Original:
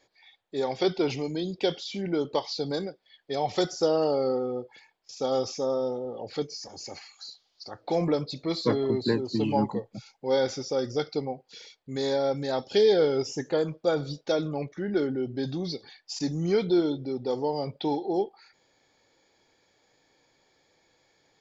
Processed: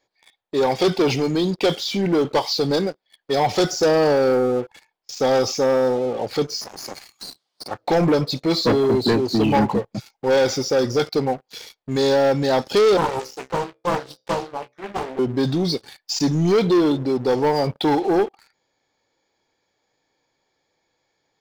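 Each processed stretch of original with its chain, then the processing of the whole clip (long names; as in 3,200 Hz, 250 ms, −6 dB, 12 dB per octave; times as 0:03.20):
0:06.61–0:07.71: gain on one half-wave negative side −12 dB + high-pass filter 120 Hz 24 dB per octave + multiband upward and downward compressor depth 40%
0:12.97–0:15.19: three-way crossover with the lows and the highs turned down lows −16 dB, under 380 Hz, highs −12 dB, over 5,500 Hz + tuned comb filter 65 Hz, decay 0.26 s, mix 90% + highs frequency-modulated by the lows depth 0.84 ms
whole clip: parametric band 960 Hz +3 dB 0.77 octaves; leveller curve on the samples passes 3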